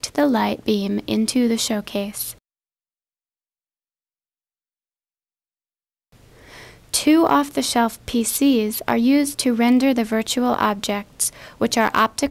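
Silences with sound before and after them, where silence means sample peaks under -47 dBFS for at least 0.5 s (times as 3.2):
2.38–6.12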